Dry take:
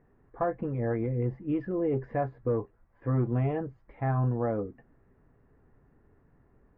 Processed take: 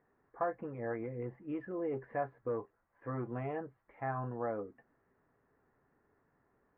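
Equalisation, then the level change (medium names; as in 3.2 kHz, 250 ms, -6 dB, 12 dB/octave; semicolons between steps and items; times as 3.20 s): low-pass 1.9 kHz 12 dB/octave; distance through air 290 m; tilt EQ +4.5 dB/octave; -1.5 dB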